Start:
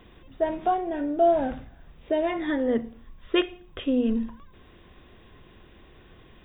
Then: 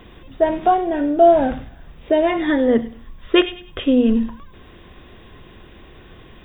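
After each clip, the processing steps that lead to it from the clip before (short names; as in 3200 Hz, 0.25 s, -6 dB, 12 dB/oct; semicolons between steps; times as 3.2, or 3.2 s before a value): thin delay 0.1 s, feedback 32%, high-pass 3300 Hz, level -7 dB; gain +8.5 dB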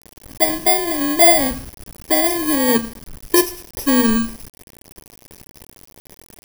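FFT order left unsorted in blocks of 32 samples; requantised 6-bit, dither none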